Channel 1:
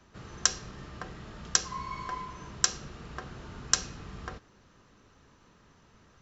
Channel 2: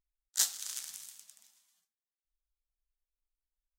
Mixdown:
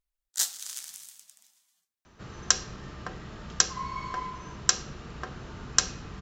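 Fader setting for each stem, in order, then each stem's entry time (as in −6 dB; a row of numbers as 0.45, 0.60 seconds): +2.5, +1.5 decibels; 2.05, 0.00 seconds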